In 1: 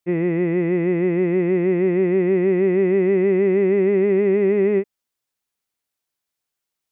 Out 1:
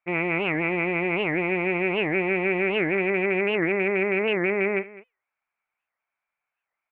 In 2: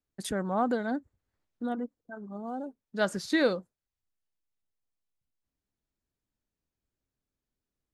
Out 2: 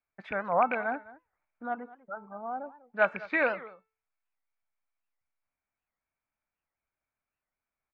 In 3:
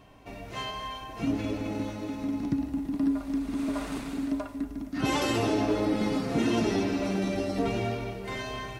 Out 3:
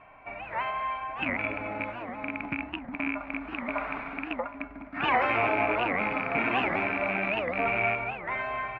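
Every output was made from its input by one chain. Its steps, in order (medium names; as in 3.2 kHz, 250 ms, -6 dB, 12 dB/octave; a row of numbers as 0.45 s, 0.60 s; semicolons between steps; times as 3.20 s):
rattle on loud lows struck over -31 dBFS, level -24 dBFS; four-pole ladder low-pass 2.4 kHz, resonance 85%; high-order bell 960 Hz +13 dB; feedback comb 440 Hz, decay 0.41 s, mix 60%; delay 206 ms -19 dB; warped record 78 rpm, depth 250 cents; peak normalisation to -12 dBFS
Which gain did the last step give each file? +11.5 dB, +11.0 dB, +12.0 dB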